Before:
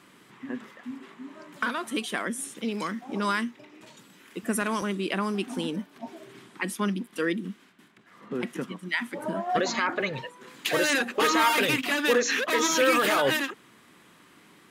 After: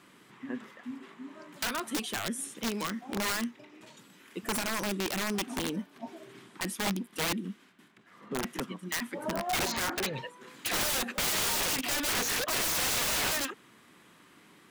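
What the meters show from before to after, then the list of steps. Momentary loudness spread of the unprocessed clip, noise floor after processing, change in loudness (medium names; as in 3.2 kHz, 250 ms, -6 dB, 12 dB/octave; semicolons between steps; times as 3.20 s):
19 LU, -59 dBFS, -4.0 dB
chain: integer overflow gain 22 dB; trim -2.5 dB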